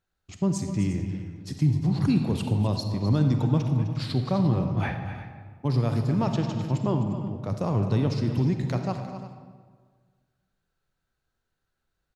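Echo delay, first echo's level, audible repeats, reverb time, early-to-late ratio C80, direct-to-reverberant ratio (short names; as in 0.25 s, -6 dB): 0.256 s, -12.0 dB, 2, 1.7 s, 6.0 dB, 4.5 dB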